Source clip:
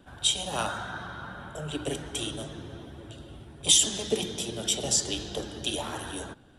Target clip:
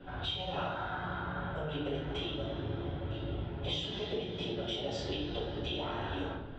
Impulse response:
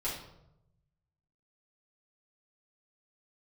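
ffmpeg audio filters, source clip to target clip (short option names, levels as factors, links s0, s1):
-filter_complex "[0:a]lowpass=f=3500:w=0.5412,lowpass=f=3500:w=1.3066,acompressor=threshold=0.00708:ratio=5[s0];[1:a]atrim=start_sample=2205[s1];[s0][s1]afir=irnorm=-1:irlink=0,volume=1.5"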